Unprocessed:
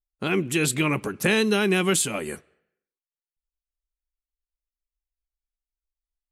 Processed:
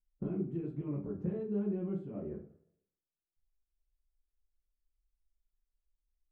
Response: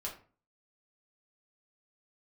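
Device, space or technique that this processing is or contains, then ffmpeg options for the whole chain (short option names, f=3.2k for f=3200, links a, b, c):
television next door: -filter_complex "[0:a]acompressor=threshold=-38dB:ratio=4,lowpass=340[a];[1:a]atrim=start_sample=2205[b];[a][b]afir=irnorm=-1:irlink=0,volume=5.5dB"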